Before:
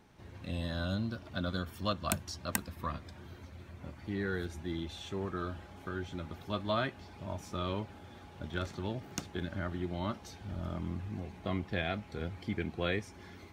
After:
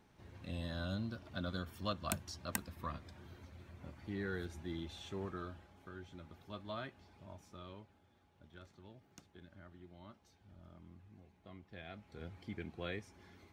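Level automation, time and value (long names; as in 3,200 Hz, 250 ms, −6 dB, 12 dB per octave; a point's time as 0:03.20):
0:05.26 −5.5 dB
0:05.73 −12 dB
0:07.15 −12 dB
0:08.12 −20 dB
0:11.61 −20 dB
0:12.28 −9.5 dB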